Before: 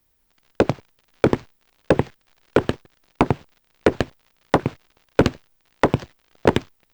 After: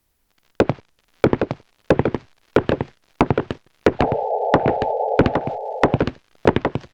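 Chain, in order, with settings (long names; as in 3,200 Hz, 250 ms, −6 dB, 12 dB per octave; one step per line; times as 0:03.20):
sound drawn into the spectrogram noise, 0:03.99–0:05.16, 410–890 Hz −23 dBFS
single-tap delay 814 ms −5.5 dB
treble cut that deepens with the level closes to 2,700 Hz, closed at −14 dBFS
level +1 dB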